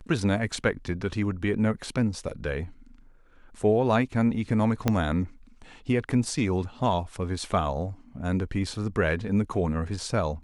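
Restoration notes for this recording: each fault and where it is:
0:04.88: click −9 dBFS

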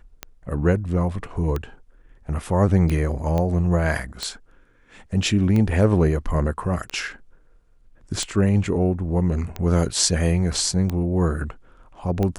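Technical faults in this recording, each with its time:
scratch tick 45 rpm −13 dBFS
0:03.38: click −13 dBFS

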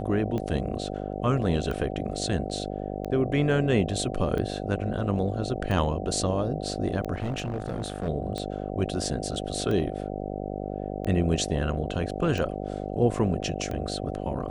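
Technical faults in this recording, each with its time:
mains buzz 50 Hz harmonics 15 −33 dBFS
scratch tick 45 rpm −20 dBFS
0:07.14–0:08.09: clipping −25.5 dBFS

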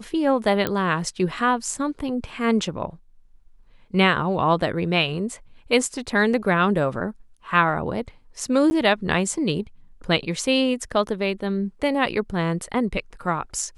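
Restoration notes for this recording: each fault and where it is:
0:00.67: click −9 dBFS
0:08.70–0:08.71: drop-out 10 ms

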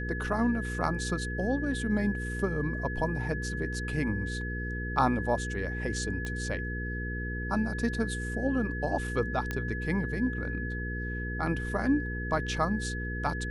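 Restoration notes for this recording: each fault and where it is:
mains hum 60 Hz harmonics 8 −35 dBFS
whistle 1,700 Hz −37 dBFS
0:06.25: click −23 dBFS
0:09.51: click −18 dBFS

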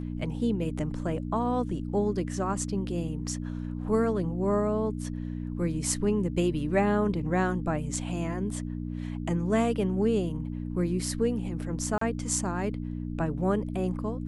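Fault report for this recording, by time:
mains hum 60 Hz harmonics 5 −34 dBFS
0:11.98–0:12.01: drop-out 34 ms

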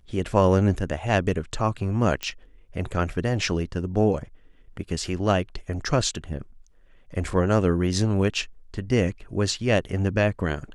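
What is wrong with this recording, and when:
0:02.23: click −13 dBFS

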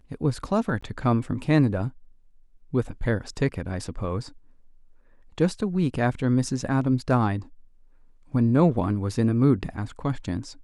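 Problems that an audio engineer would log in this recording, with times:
0:00.81–0:00.82: drop-out 15 ms

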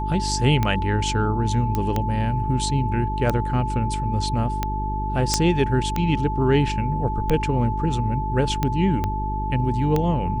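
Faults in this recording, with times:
mains hum 50 Hz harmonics 8 −27 dBFS
scratch tick 45 rpm −9 dBFS
whistle 870 Hz −27 dBFS
0:01.75: click −11 dBFS
0:05.34: click −4 dBFS
0:09.04: click −12 dBFS

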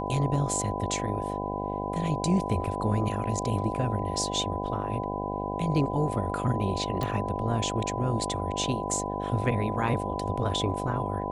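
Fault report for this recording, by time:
mains buzz 50 Hz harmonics 16 −33 dBFS
whistle 1,000 Hz −34 dBFS
0:07.03: click −17 dBFS

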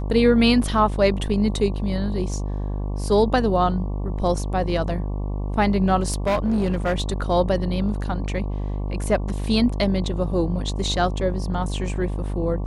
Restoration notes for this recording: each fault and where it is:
mains buzz 50 Hz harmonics 23 −26 dBFS
0:06.08–0:07.22: clipping −17 dBFS

